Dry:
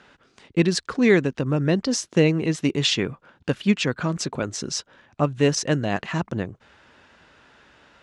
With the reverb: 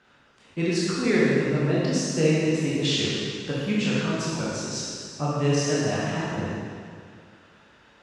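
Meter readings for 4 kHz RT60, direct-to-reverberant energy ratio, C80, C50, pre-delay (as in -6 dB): 2.0 s, -8.0 dB, -1.5 dB, -3.5 dB, 7 ms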